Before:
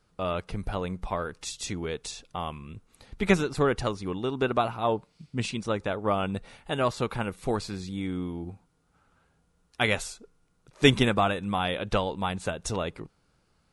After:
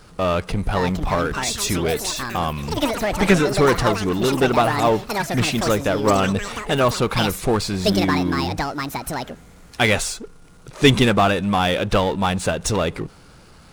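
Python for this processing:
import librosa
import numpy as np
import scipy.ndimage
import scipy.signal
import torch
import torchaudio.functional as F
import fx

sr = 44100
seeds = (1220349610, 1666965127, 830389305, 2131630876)

y = fx.power_curve(x, sr, exponent=0.7)
y = fx.echo_pitch(y, sr, ms=625, semitones=7, count=3, db_per_echo=-6.0)
y = y * librosa.db_to_amplitude(3.0)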